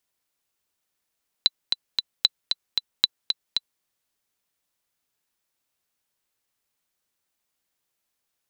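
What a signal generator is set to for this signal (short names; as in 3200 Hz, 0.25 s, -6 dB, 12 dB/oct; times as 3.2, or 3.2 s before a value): metronome 228 bpm, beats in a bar 3, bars 3, 3990 Hz, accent 5.5 dB -3 dBFS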